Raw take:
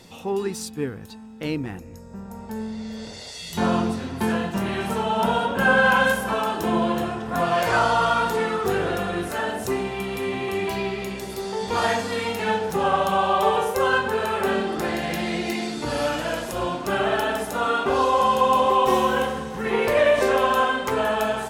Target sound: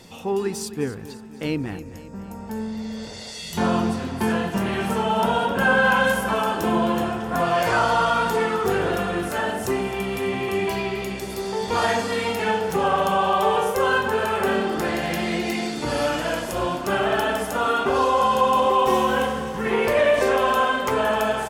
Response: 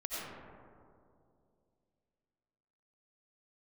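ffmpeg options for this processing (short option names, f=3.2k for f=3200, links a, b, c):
-filter_complex "[0:a]asplit=2[a][b];[b]alimiter=limit=-14.5dB:level=0:latency=1,volume=0dB[c];[a][c]amix=inputs=2:normalize=0,bandreject=f=3.9k:w=16,aecho=1:1:261|522|783|1044|1305:0.168|0.094|0.0526|0.0295|0.0165,volume=-4.5dB"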